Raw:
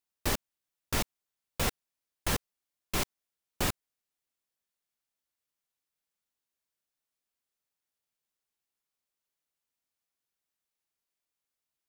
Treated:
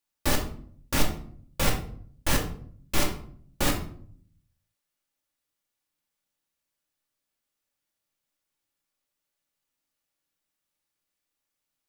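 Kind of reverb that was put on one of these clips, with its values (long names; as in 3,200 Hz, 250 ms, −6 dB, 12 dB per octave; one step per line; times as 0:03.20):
rectangular room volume 710 cubic metres, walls furnished, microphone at 2.4 metres
level +2 dB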